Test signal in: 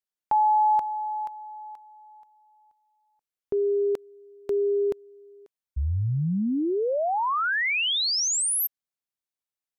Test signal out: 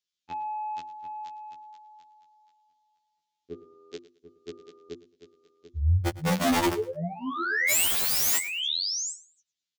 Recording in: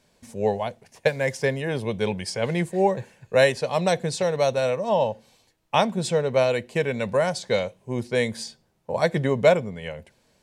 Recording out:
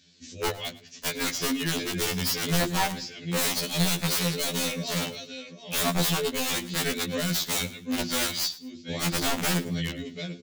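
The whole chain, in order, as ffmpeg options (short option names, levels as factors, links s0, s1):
-filter_complex "[0:a]asplit=2[s0][s1];[s1]highpass=f=720:p=1,volume=3.98,asoftclip=type=tanh:threshold=0.562[s2];[s0][s2]amix=inputs=2:normalize=0,lowpass=f=1800:p=1,volume=0.501,firequalizer=gain_entry='entry(280,0);entry(550,-20);entry(3500,6)':delay=0.05:min_phase=1,asoftclip=type=tanh:threshold=0.15,highpass=f=44:w=0.5412,highpass=f=44:w=1.3066,aresample=16000,aresample=44100,equalizer=f=930:w=4.3:g=-14,bandreject=f=50:t=h:w=6,bandreject=f=100:t=h:w=6,bandreject=f=150:t=h:w=6,bandreject=f=200:t=h:w=6,bandreject=f=250:t=h:w=6,bandreject=f=300:t=h:w=6,bandreject=f=350:t=h:w=6,bandreject=f=400:t=h:w=6,asplit=2[s3][s4];[s4]aecho=0:1:740:0.251[s5];[s3][s5]amix=inputs=2:normalize=0,aeval=exprs='(mod(16.8*val(0)+1,2)-1)/16.8':c=same,asplit=2[s6][s7];[s7]aecho=0:1:108|216:0.119|0.0309[s8];[s6][s8]amix=inputs=2:normalize=0,afftfilt=real='re*2*eq(mod(b,4),0)':imag='im*2*eq(mod(b,4),0)':win_size=2048:overlap=0.75,volume=2.24"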